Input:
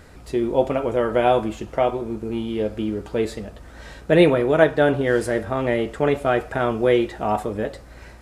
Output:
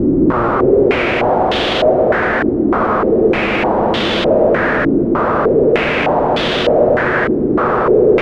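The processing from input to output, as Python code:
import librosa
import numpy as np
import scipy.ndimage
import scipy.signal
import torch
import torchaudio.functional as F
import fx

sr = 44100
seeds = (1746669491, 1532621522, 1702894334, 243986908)

p1 = fx.spec_blur(x, sr, span_ms=1280.0)
p2 = scipy.signal.sosfilt(scipy.signal.butter(4, 140.0, 'highpass', fs=sr, output='sos'), p1)
p3 = fx.rider(p2, sr, range_db=10, speed_s=2.0)
p4 = p2 + (p3 * librosa.db_to_amplitude(-3.0))
p5 = fx.echo_swell(p4, sr, ms=117, loudest=8, wet_db=-8.0)
p6 = fx.schmitt(p5, sr, flips_db=-28.0)
p7 = p6 + fx.echo_single(p6, sr, ms=156, db=-6.0, dry=0)
p8 = fx.filter_held_lowpass(p7, sr, hz=3.3, low_hz=310.0, high_hz=3400.0)
y = p8 * librosa.db_to_amplitude(-1.0)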